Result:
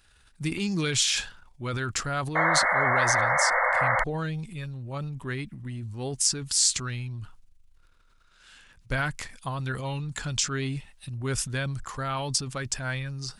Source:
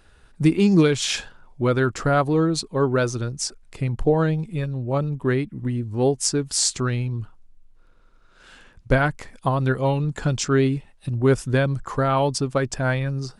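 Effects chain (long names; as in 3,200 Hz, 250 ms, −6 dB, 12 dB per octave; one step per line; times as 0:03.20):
transient designer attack −1 dB, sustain +8 dB
guitar amp tone stack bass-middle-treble 5-5-5
sound drawn into the spectrogram noise, 0:02.35–0:04.04, 490–2,200 Hz −29 dBFS
level +5.5 dB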